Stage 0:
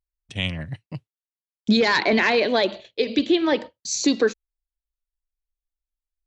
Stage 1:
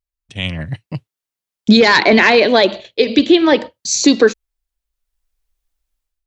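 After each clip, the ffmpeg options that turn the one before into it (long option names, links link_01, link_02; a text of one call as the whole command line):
ffmpeg -i in.wav -af "dynaudnorm=framelen=350:gausssize=3:maxgain=15dB" out.wav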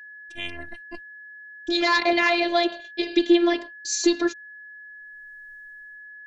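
ffmpeg -i in.wav -af "dynaudnorm=framelen=230:gausssize=7:maxgain=15dB,afftfilt=real='hypot(re,im)*cos(PI*b)':imag='0':win_size=512:overlap=0.75,aeval=exprs='val(0)+0.02*sin(2*PI*1700*n/s)':channel_layout=same,volume=-6.5dB" out.wav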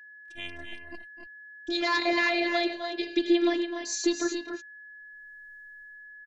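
ffmpeg -i in.wav -af "aecho=1:1:256|284:0.266|0.422,volume=-6dB" out.wav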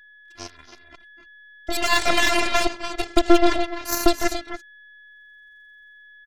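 ffmpeg -i in.wav -af "aeval=exprs='0.266*(cos(1*acos(clip(val(0)/0.266,-1,1)))-cos(1*PI/2))+0.0841*(cos(4*acos(clip(val(0)/0.266,-1,1)))-cos(4*PI/2))+0.0211*(cos(7*acos(clip(val(0)/0.266,-1,1)))-cos(7*PI/2))+0.0335*(cos(8*acos(clip(val(0)/0.266,-1,1)))-cos(8*PI/2))':channel_layout=same,volume=6dB" out.wav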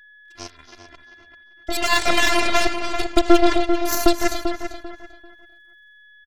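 ffmpeg -i in.wav -filter_complex "[0:a]asplit=2[link_01][link_02];[link_02]adelay=392,lowpass=frequency=3100:poles=1,volume=-8dB,asplit=2[link_03][link_04];[link_04]adelay=392,lowpass=frequency=3100:poles=1,volume=0.25,asplit=2[link_05][link_06];[link_06]adelay=392,lowpass=frequency=3100:poles=1,volume=0.25[link_07];[link_01][link_03][link_05][link_07]amix=inputs=4:normalize=0,volume=1dB" out.wav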